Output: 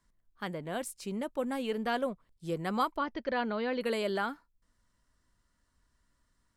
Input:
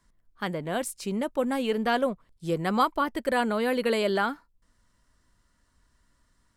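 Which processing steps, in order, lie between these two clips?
2.97–3.81 s: steep low-pass 6.2 kHz 72 dB/octave; trim -6.5 dB

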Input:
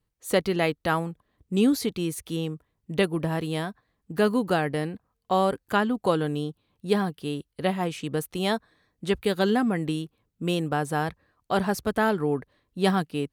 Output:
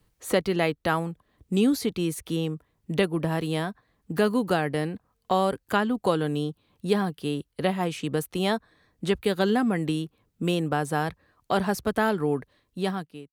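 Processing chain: fade out at the end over 1.01 s; three bands compressed up and down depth 40%

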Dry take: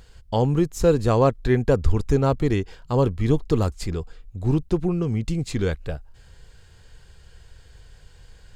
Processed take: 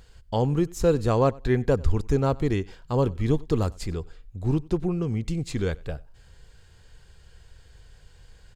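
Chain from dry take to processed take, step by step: feedback delay 94 ms, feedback 17%, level -24 dB; trim -3 dB

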